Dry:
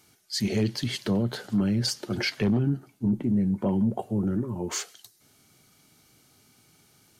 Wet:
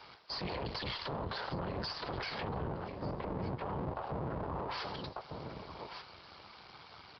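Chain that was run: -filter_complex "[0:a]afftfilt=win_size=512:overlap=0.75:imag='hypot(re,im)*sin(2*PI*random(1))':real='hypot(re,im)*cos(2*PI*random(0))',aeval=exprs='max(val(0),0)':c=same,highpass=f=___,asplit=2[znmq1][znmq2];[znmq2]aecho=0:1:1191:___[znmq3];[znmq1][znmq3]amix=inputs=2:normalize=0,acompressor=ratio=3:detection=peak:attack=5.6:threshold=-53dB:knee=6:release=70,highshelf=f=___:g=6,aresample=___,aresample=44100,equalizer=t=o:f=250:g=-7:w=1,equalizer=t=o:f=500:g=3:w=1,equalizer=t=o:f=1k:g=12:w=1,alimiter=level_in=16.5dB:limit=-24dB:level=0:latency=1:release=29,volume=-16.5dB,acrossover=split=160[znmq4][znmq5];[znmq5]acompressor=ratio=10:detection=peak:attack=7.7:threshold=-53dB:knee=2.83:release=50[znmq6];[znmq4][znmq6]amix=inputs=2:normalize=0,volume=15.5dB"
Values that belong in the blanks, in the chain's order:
52, 0.0794, 3.6k, 11025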